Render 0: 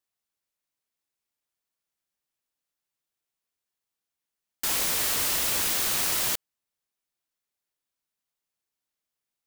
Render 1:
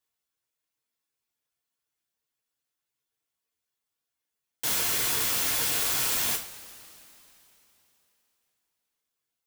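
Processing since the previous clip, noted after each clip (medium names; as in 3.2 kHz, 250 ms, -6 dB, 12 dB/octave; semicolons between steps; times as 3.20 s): reverb removal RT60 1.1 s; integer overflow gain 25 dB; two-slope reverb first 0.32 s, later 3.4 s, from -22 dB, DRR -1.5 dB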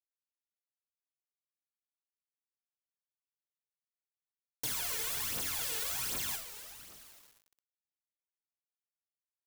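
phaser 1.3 Hz, delay 2.4 ms, feedback 63%; compression 3:1, threshold -29 dBFS, peak gain reduction 6.5 dB; word length cut 8-bit, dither none; trim -5.5 dB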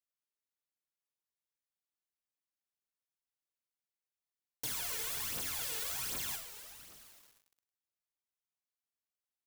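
delay 103 ms -17 dB; trim -2.5 dB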